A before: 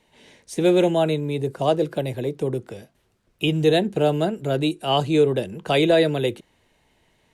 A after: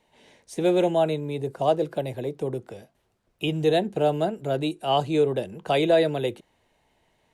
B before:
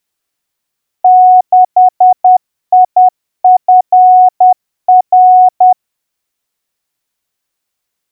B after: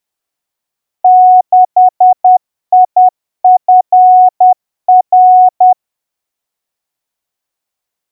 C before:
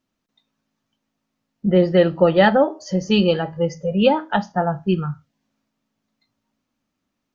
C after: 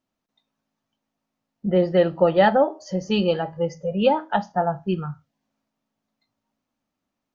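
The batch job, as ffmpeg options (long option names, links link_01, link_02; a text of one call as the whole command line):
ffmpeg -i in.wav -af "equalizer=frequency=740:width=1.3:gain=5.5,volume=-5.5dB" out.wav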